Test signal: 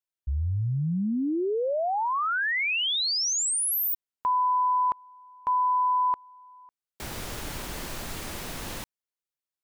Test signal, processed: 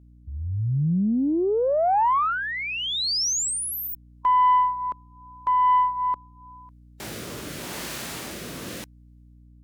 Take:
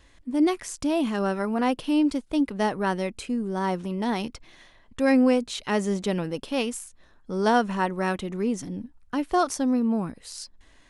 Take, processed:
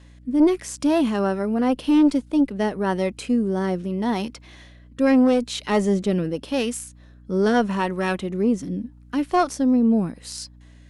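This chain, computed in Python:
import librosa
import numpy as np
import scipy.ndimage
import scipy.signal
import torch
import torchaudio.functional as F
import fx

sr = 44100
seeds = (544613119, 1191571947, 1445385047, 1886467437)

y = scipy.signal.sosfilt(scipy.signal.butter(2, 140.0, 'highpass', fs=sr, output='sos'), x)
y = fx.rotary(y, sr, hz=0.85)
y = fx.add_hum(y, sr, base_hz=60, snr_db=26)
y = fx.hpss(y, sr, part='percussive', gain_db=-5)
y = fx.cheby_harmonics(y, sr, harmonics=(2, 4, 5), levels_db=(-8, -28, -23), full_scale_db=-11.0)
y = F.gain(torch.from_numpy(y), 5.0).numpy()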